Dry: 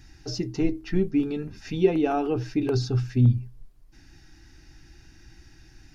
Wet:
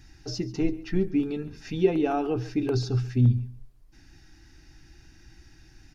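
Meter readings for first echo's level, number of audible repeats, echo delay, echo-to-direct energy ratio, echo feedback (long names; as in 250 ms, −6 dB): −19.0 dB, 2, 138 ms, −19.0 dB, 16%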